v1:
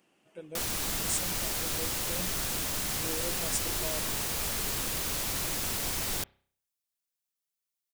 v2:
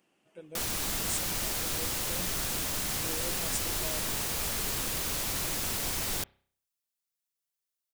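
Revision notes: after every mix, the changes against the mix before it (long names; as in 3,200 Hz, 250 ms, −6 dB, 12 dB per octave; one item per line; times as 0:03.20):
speech −3.0 dB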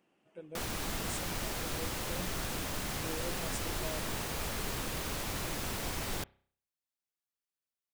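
master: add high-shelf EQ 3,500 Hz −10 dB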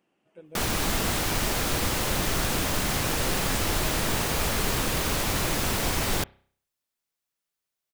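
background +10.5 dB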